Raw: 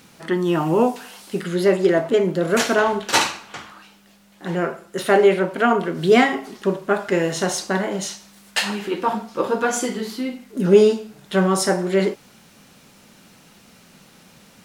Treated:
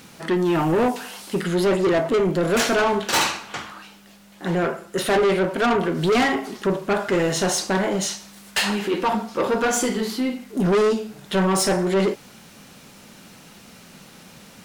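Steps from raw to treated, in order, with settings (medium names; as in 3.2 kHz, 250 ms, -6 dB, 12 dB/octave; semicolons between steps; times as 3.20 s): saturation -19.5 dBFS, distortion -7 dB; trim +4 dB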